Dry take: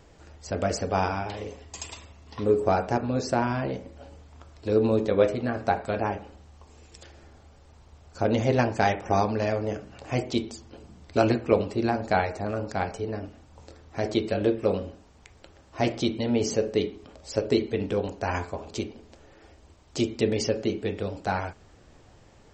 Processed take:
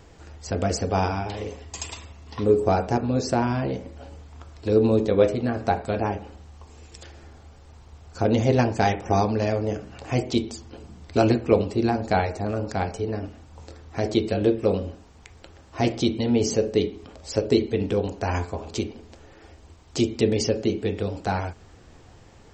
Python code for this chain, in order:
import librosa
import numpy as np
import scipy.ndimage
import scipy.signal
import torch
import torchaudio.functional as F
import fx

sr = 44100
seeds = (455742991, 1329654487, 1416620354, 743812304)

y = fx.peak_eq(x, sr, hz=83.0, db=4.0, octaves=0.3)
y = fx.notch(y, sr, hz=590.0, q=12.0)
y = fx.dynamic_eq(y, sr, hz=1500.0, q=0.71, threshold_db=-39.0, ratio=4.0, max_db=-5)
y = y * librosa.db_to_amplitude(4.0)